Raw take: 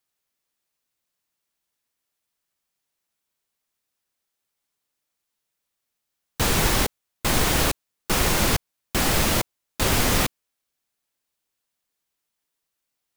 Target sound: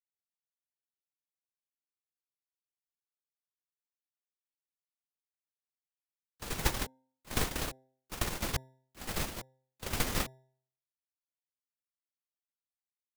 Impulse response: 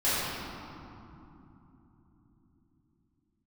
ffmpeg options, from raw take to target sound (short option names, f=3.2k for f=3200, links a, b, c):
-filter_complex "[0:a]agate=range=-39dB:threshold=-17dB:ratio=16:detection=peak,bandreject=f=130.6:t=h:w=4,bandreject=f=261.2:t=h:w=4,bandreject=f=391.8:t=h:w=4,bandreject=f=522.4:t=h:w=4,bandreject=f=653:t=h:w=4,bandreject=f=783.6:t=h:w=4,bandreject=f=914.2:t=h:w=4,acrossover=split=180|1300[a][b][c];[a]acrusher=samples=24:mix=1:aa=0.000001[d];[d][b][c]amix=inputs=3:normalize=0"